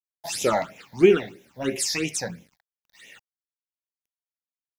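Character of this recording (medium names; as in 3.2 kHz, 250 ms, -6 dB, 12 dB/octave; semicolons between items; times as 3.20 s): tremolo triangle 0.57 Hz, depth 50%; a quantiser's noise floor 10-bit, dither none; phasing stages 8, 3 Hz, lowest notch 350–1400 Hz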